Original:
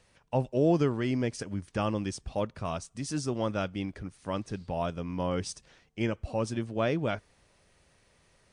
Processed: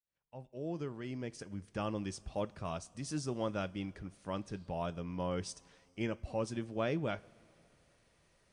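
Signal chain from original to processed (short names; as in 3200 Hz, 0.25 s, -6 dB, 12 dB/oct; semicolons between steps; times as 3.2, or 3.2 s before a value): opening faded in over 2.18 s; two-slope reverb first 0.28 s, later 3 s, from -18 dB, DRR 16 dB; gain -6 dB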